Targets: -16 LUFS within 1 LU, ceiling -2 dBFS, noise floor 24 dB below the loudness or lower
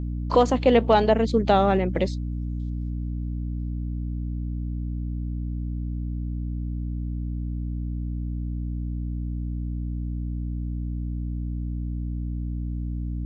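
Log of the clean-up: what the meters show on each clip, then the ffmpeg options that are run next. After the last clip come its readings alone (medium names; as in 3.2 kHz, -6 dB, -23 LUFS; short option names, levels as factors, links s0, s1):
hum 60 Hz; highest harmonic 300 Hz; hum level -26 dBFS; loudness -27.0 LUFS; peak level -6.0 dBFS; loudness target -16.0 LUFS
-> -af "bandreject=f=60:t=h:w=4,bandreject=f=120:t=h:w=4,bandreject=f=180:t=h:w=4,bandreject=f=240:t=h:w=4,bandreject=f=300:t=h:w=4"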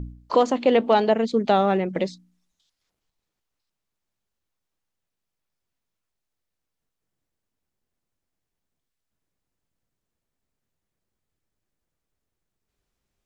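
hum not found; loudness -21.5 LUFS; peak level -6.0 dBFS; loudness target -16.0 LUFS
-> -af "volume=1.88,alimiter=limit=0.794:level=0:latency=1"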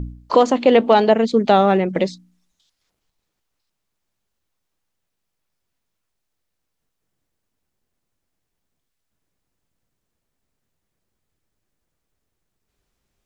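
loudness -16.0 LUFS; peak level -2.0 dBFS; noise floor -78 dBFS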